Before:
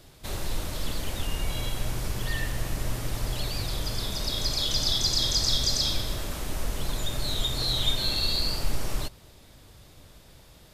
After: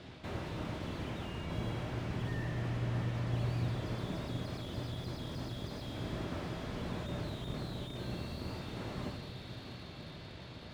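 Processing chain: octaver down 2 oct, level +3 dB; de-hum 141.9 Hz, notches 39; reverse; compressor, threshold -32 dBFS, peak gain reduction 15 dB; reverse; Chebyshev band-pass 120–2900 Hz, order 2; diffused feedback echo 0.681 s, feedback 63%, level -13.5 dB; on a send at -7 dB: reverb RT60 0.95 s, pre-delay 3 ms; on the sum: slew limiter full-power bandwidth 6 Hz; gain +4.5 dB

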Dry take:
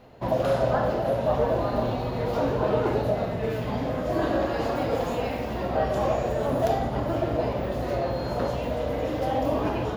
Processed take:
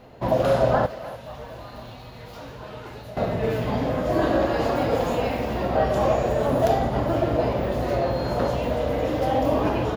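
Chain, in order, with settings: 0.86–3.17 passive tone stack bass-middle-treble 5-5-5; speakerphone echo 0.3 s, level -15 dB; gain +3.5 dB

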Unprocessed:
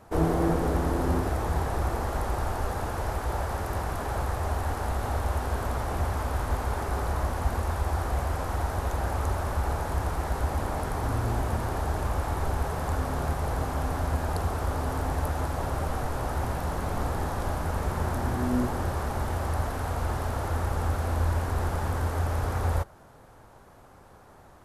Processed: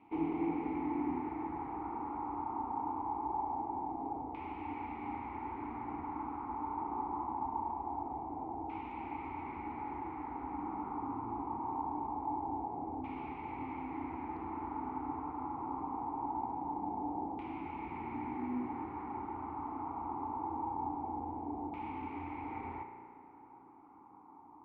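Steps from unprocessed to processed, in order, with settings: in parallel at -1 dB: compressor, threshold -35 dBFS, peak gain reduction 15.5 dB; on the sum: spring tank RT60 2.3 s, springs 34 ms, chirp 35 ms, DRR 5 dB; LFO low-pass saw down 0.23 Hz 660–2800 Hz; vowel filter u; gain -1.5 dB

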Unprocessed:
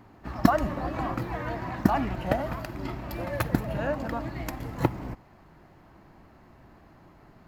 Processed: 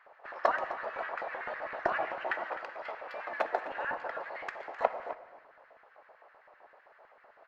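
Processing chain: HPF 100 Hz 12 dB/oct; low shelf 190 Hz +4 dB; spectral gate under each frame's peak -10 dB weak; LFO high-pass square 7.8 Hz 620–1600 Hz; tape spacing loss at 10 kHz 32 dB; echo 0.258 s -15 dB; on a send at -13 dB: reverb RT60 1.0 s, pre-delay 4 ms; on the sum: gain +2.5 dB

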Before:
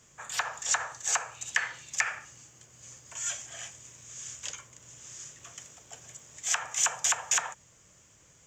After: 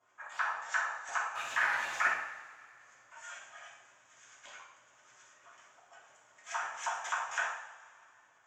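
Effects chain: 1.35–2.07 zero-crossing step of -24.5 dBFS; LFO band-pass saw up 9.2 Hz 730–1800 Hz; two-slope reverb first 0.65 s, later 2.6 s, from -18 dB, DRR -6.5 dB; gain -4 dB

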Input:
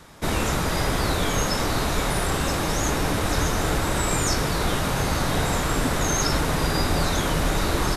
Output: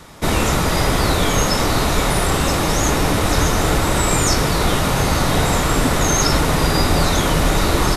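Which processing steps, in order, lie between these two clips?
notch 1600 Hz, Q 17; gain +6.5 dB

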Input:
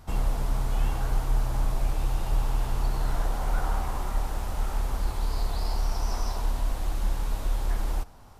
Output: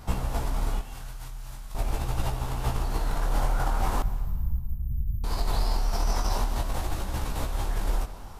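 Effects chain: in parallel at +2 dB: negative-ratio compressor -28 dBFS, ratio -0.5; 0.79–1.75 on the sum: passive tone stack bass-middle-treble 5-5-5; chorus 0.42 Hz, delay 16 ms, depth 7.1 ms; 4.02–5.24 inverse Chebyshev band-stop 350–9600 Hz, stop band 40 dB; reverb RT60 1.4 s, pre-delay 0.118 s, DRR 14.5 dB

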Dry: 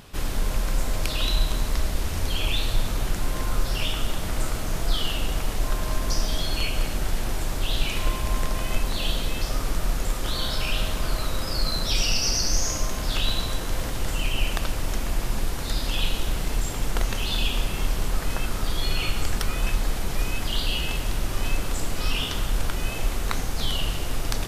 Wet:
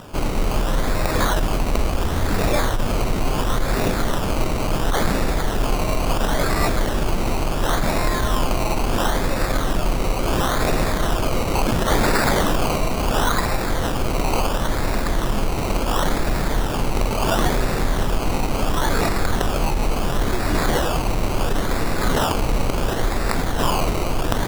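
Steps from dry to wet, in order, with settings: median filter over 5 samples; low shelf 100 Hz -8 dB; in parallel at -1 dB: limiter -21 dBFS, peak gain reduction 11.5 dB; on the sum: negative-ratio compressor -21 dBFS, ratio -0.5; decimation with a swept rate 20×, swing 60% 0.72 Hz; gain +5 dB

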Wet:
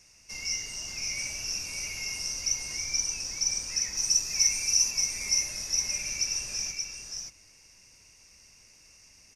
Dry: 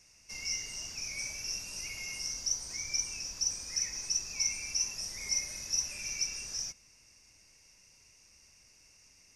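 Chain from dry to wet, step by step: 3.97–4.91 high shelf 7400 Hz +11 dB; echo 0.577 s -4.5 dB; gain +3.5 dB

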